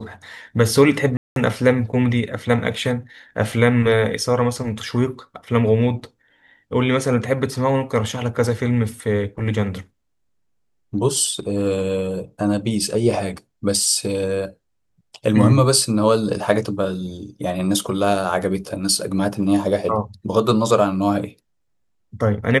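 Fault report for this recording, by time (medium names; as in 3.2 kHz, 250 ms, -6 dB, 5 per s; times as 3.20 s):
1.17–1.36 s: dropout 192 ms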